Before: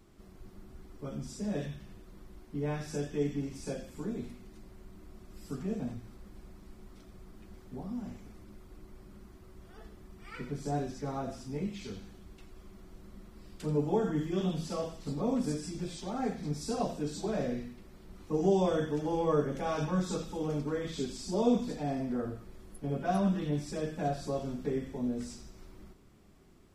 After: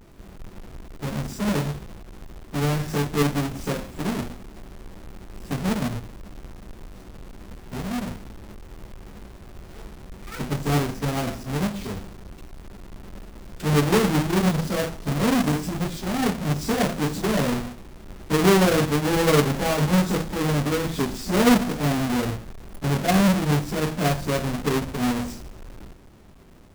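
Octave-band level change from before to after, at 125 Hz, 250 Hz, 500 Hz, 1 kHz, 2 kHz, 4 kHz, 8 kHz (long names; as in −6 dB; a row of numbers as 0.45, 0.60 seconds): +12.5, +10.0, +8.0, +11.0, +18.5, +16.0, +14.5 decibels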